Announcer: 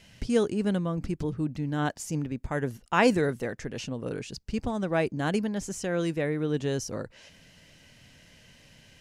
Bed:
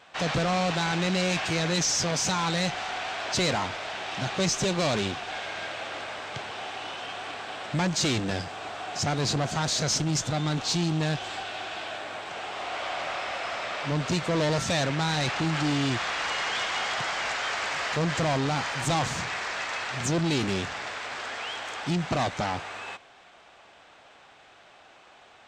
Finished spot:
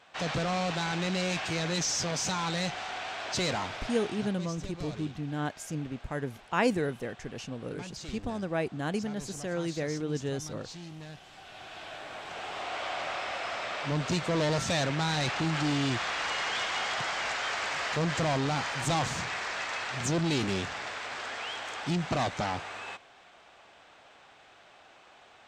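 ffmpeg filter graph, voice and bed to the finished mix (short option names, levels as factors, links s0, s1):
-filter_complex "[0:a]adelay=3600,volume=0.596[s0];[1:a]volume=3.55,afade=t=out:st=3.94:d=0.44:silence=0.211349,afade=t=in:st=11.32:d=1.21:silence=0.16788[s1];[s0][s1]amix=inputs=2:normalize=0"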